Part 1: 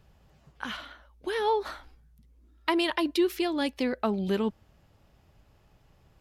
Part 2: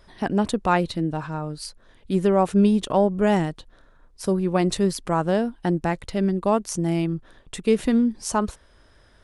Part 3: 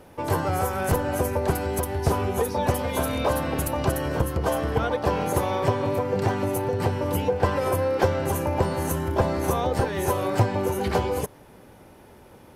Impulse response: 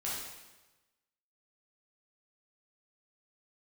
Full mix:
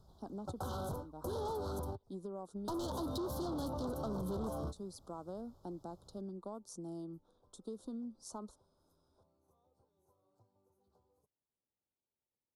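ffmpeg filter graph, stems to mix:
-filter_complex "[0:a]volume=-3dB,asplit=3[a][b][c];[a]atrim=end=1.95,asetpts=PTS-STARTPTS,afade=t=out:st=1.946:d=0.004:c=hsin[d];[b]atrim=start=1.95:end=2.56,asetpts=PTS-STARTPTS,volume=0[e];[c]atrim=start=2.56,asetpts=PTS-STARTPTS,afade=t=in:d=0.004:c=hsin[f];[d][e][f]concat=n=3:v=0:a=1,asplit=2[g][h];[1:a]lowshelf=f=170:t=q:w=1.5:g=-8,acompressor=threshold=-20dB:ratio=6,volume=-19.5dB[i];[2:a]volume=2dB[j];[h]apad=whole_len=553555[k];[j][k]sidechaingate=range=-53dB:threshold=-54dB:ratio=16:detection=peak[l];[i][l]amix=inputs=2:normalize=0,acrossover=split=82|190|2600|5900[m][n][o][p][q];[m]acompressor=threshold=-37dB:ratio=4[r];[n]acompressor=threshold=-33dB:ratio=4[s];[o]acompressor=threshold=-31dB:ratio=4[t];[p]acompressor=threshold=-52dB:ratio=4[u];[q]acompressor=threshold=-49dB:ratio=4[v];[r][s][t][u][v]amix=inputs=5:normalize=0,alimiter=level_in=2dB:limit=-24dB:level=0:latency=1:release=218,volume=-2dB,volume=0dB[w];[g][w]amix=inputs=2:normalize=0,asoftclip=type=tanh:threshold=-32dB,asuperstop=centerf=2200:order=8:qfactor=0.96,acompressor=threshold=-37dB:ratio=3"

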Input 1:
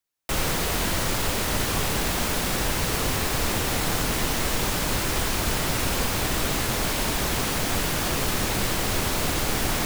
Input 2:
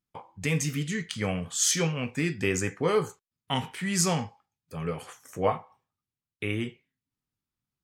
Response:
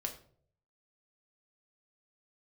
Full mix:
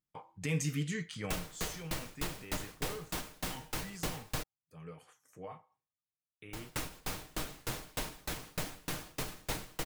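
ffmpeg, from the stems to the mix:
-filter_complex "[0:a]alimiter=limit=-19.5dB:level=0:latency=1:release=247,aeval=exprs='val(0)*pow(10,-33*if(lt(mod(3.3*n/s,1),2*abs(3.3)/1000),1-mod(3.3*n/s,1)/(2*abs(3.3)/1000),(mod(3.3*n/s,1)-2*abs(3.3)/1000)/(1-2*abs(3.3)/1000))/20)':c=same,adelay=1000,volume=-2.5dB,asplit=3[a][b][c];[a]atrim=end=4.43,asetpts=PTS-STARTPTS,afade=t=out:st=4.426:d=0.004:c=hsin[d];[b]atrim=start=4.43:end=6.53,asetpts=PTS-STARTPTS,volume=0[e];[c]atrim=start=6.53,asetpts=PTS-STARTPTS,afade=t=in:d=0.004:c=hsin[f];[d][e][f]concat=n=3:v=0:a=1[g];[1:a]alimiter=limit=-20dB:level=0:latency=1:release=19,volume=-6dB,afade=t=out:st=1.11:d=0.37:silence=0.266073[h];[g][h]amix=inputs=2:normalize=0,aecho=1:1:6.5:0.31"

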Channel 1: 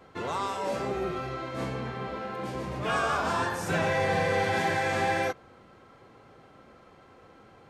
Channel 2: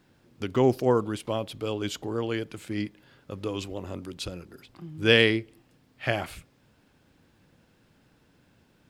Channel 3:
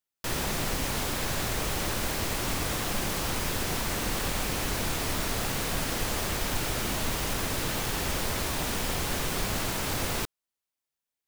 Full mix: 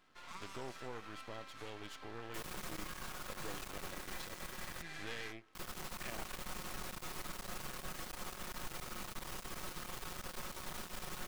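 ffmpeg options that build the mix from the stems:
-filter_complex "[0:a]highpass=f=1.1k:w=0.5412,highpass=f=1.1k:w=1.3066,acompressor=threshold=-30dB:ratio=6,volume=-9dB[a];[1:a]acompressor=threshold=-36dB:ratio=3,asplit=2[b][c];[c]highpass=f=720:p=1,volume=13dB,asoftclip=type=tanh:threshold=-23.5dB[d];[b][d]amix=inputs=2:normalize=0,lowpass=f=3.3k:p=1,volume=-6dB,volume=-9.5dB[e];[2:a]equalizer=f=1.2k:t=o:w=0.58:g=6.5,asoftclip=type=tanh:threshold=-25.5dB,adelay=2100,volume=-5dB,asplit=3[f][g][h];[f]atrim=end=4.82,asetpts=PTS-STARTPTS,afade=t=out:st=4.816:d=0.004:c=hsin[i];[g]atrim=start=4.82:end=5.55,asetpts=PTS-STARTPTS,volume=0[j];[h]atrim=start=5.55,asetpts=PTS-STARTPTS,afade=t=in:d=0.004:c=hsin[k];[i][j][k]concat=n=3:v=0:a=1[l];[a][l]amix=inputs=2:normalize=0,aecho=1:1:5.5:0.55,alimiter=level_in=10dB:limit=-24dB:level=0:latency=1:release=179,volume=-10dB,volume=0dB[m];[e][m]amix=inputs=2:normalize=0,aeval=exprs='max(val(0),0)':c=same"

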